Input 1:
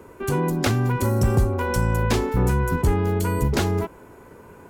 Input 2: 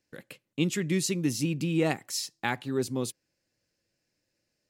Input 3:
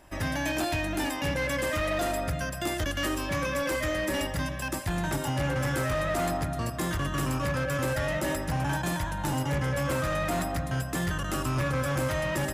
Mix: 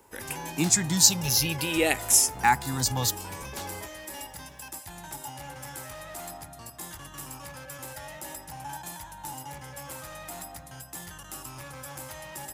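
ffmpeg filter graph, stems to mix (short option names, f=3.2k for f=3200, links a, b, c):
-filter_complex "[0:a]lowpass=9.1k,asoftclip=type=tanh:threshold=-20.5dB,volume=-18dB[a];[1:a]asubboost=boost=6.5:cutoff=100,asplit=2[b][c];[c]afreqshift=-0.53[d];[b][d]amix=inputs=2:normalize=1,volume=2.5dB[e];[2:a]volume=-17.5dB[f];[a][e][f]amix=inputs=3:normalize=0,equalizer=f=850:t=o:w=0.3:g=14,crystalizer=i=5:c=0"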